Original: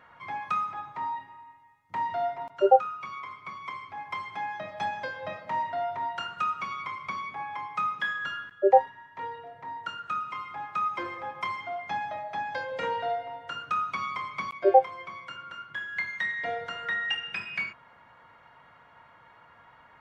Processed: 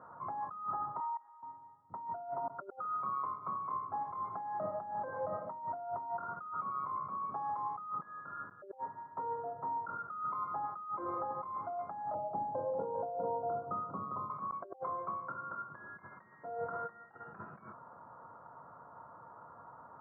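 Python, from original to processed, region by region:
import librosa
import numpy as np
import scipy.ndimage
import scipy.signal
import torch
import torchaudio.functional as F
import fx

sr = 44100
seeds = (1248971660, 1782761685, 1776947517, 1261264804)

y = fx.chain(x, sr, fx.highpass(hz=1100.0, slope=12),
    fx.level_steps(step_db=20), at=(1.0, 1.43))
y = fx.chain(y, sr, fx.bessel_lowpass(hz=600.0, order=4),
    fx.echo_single(ms=402, db=-6.0), at=(12.14, 14.3))
y = scipy.signal.sosfilt(scipy.signal.butter(2, 98.0, 'highpass', fs=sr, output='sos'), y)
y = fx.over_compress(y, sr, threshold_db=-38.0, ratio=-1.0)
y = scipy.signal.sosfilt(scipy.signal.ellip(4, 1.0, 50, 1300.0, 'lowpass', fs=sr, output='sos'), y)
y = y * librosa.db_to_amplitude(-1.5)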